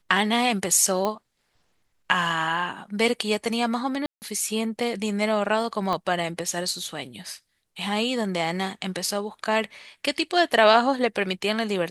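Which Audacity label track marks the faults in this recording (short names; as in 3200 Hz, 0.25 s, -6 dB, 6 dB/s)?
1.050000	1.050000	pop -13 dBFS
4.060000	4.220000	gap 0.159 s
5.930000	5.930000	pop -15 dBFS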